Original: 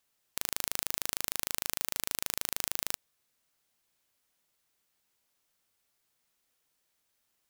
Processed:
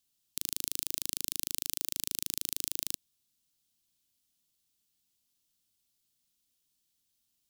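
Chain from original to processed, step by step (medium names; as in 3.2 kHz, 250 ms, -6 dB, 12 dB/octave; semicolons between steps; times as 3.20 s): high-order bell 970 Hz -13 dB 2.8 oct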